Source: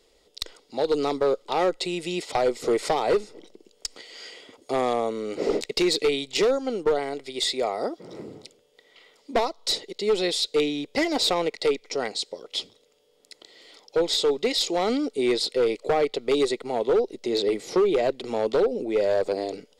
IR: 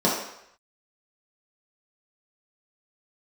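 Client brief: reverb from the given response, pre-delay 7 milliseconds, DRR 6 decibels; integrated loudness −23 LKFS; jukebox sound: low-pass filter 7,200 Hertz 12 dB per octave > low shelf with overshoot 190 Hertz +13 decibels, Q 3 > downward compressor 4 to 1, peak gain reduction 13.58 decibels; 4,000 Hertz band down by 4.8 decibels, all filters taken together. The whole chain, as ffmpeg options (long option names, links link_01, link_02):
-filter_complex "[0:a]equalizer=frequency=4000:width_type=o:gain=-5,asplit=2[link_01][link_02];[1:a]atrim=start_sample=2205,adelay=7[link_03];[link_02][link_03]afir=irnorm=-1:irlink=0,volume=-22.5dB[link_04];[link_01][link_04]amix=inputs=2:normalize=0,lowpass=7200,lowshelf=frequency=190:width_type=q:width=3:gain=13,acompressor=threshold=-31dB:ratio=4,volume=11.5dB"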